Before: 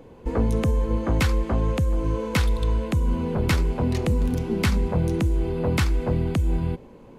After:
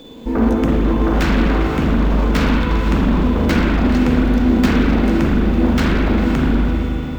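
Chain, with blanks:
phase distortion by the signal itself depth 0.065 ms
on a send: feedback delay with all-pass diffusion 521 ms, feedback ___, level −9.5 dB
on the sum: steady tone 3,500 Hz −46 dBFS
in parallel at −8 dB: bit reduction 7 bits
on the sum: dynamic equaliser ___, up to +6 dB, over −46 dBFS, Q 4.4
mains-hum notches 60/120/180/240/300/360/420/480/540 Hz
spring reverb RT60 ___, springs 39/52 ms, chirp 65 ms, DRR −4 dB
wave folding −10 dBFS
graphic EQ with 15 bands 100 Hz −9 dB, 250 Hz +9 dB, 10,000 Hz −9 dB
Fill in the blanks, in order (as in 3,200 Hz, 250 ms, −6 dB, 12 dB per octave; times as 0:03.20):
46%, 1,400 Hz, 2.6 s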